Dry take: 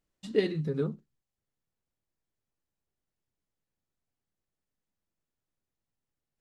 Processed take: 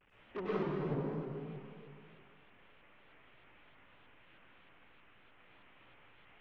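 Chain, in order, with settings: one-bit delta coder 16 kbps, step -33 dBFS; expander -25 dBFS; low-pass that closes with the level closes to 340 Hz, closed at -31.5 dBFS; saturation -32.5 dBFS, distortion -8 dB; bass shelf 490 Hz -9 dB; plate-style reverb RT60 2.5 s, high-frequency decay 0.95×, pre-delay 85 ms, DRR -9.5 dB; vibrato with a chosen wave saw up 3.2 Hz, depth 100 cents; trim +1 dB

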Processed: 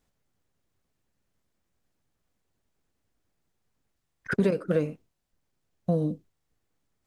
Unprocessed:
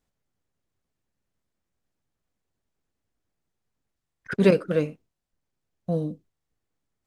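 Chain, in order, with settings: dynamic bell 3.2 kHz, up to -5 dB, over -44 dBFS, Q 0.86; compression 12:1, threshold -24 dBFS, peak gain reduction 13 dB; trim +4 dB

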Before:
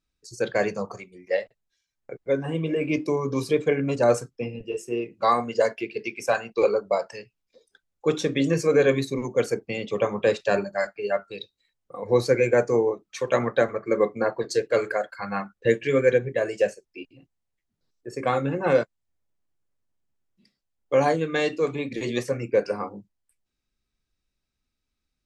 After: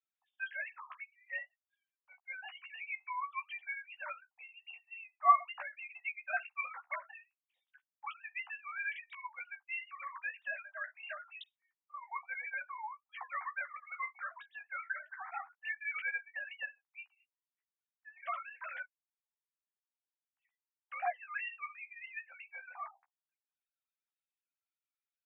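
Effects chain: formants replaced by sine waves; steep high-pass 730 Hz 96 dB/octave; doubling 14 ms -6 dB; trim -2.5 dB

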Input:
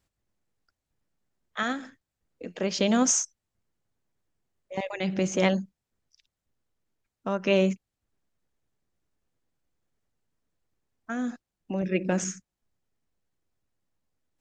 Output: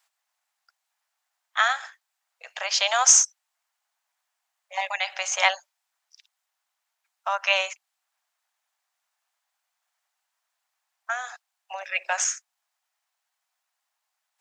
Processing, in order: steep high-pass 710 Hz 48 dB/octave; trim +9 dB

